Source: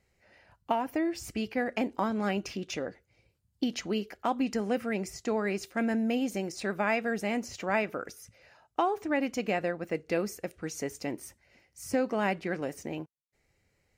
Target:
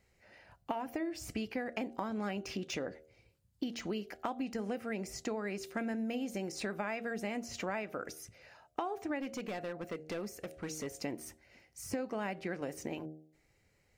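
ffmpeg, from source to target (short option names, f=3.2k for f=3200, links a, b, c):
-filter_complex "[0:a]deesser=0.95,bandreject=f=77.82:t=h:w=4,bandreject=f=155.64:t=h:w=4,bandreject=f=233.46:t=h:w=4,bandreject=f=311.28:t=h:w=4,bandreject=f=389.1:t=h:w=4,bandreject=f=466.92:t=h:w=4,bandreject=f=544.74:t=h:w=4,bandreject=f=622.56:t=h:w=4,bandreject=f=700.38:t=h:w=4,bandreject=f=778.2:t=h:w=4,acompressor=threshold=-35dB:ratio=6,asettb=1/sr,asplit=3[a][b][c];[a]atrim=end=9.204[d];[b]atrim=start=9.2:end=10.87,asetpts=PTS-STARTPTS,afade=t=in:d=0.004:c=qsin,afade=t=out:st=1.666:d=0.004:c=qsin,volume=35.5dB,asoftclip=hard,volume=-35.5dB[e];[c]atrim=start=10.866[f];[d][e]acrossfade=d=0.004:c1=hsin:c2=qsin[g];[g][f]acrossfade=d=0.004:c1=qsin:c2=hsin,volume=1dB"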